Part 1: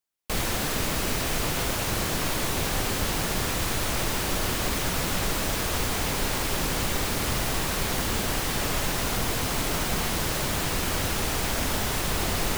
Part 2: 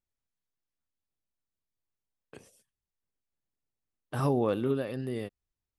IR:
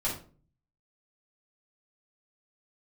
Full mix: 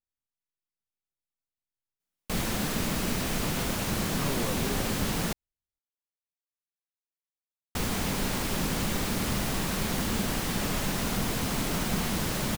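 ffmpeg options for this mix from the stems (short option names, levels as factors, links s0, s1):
-filter_complex "[0:a]equalizer=f=200:t=o:w=0.86:g=9,adelay=2000,volume=0.631,asplit=3[s0][s1][s2];[s0]atrim=end=5.33,asetpts=PTS-STARTPTS,afade=t=out:st=5.326:d=0.004:c=hsin[s3];[s1]atrim=start=5.33:end=7.75,asetpts=PTS-STARTPTS,volume=0[s4];[s2]atrim=start=7.75,asetpts=PTS-STARTPTS,afade=t=in:d=0.004:c=hsin[s5];[s3][s4][s5]concat=n=3:v=0:a=1[s6];[1:a]volume=0.376[s7];[s6][s7]amix=inputs=2:normalize=0"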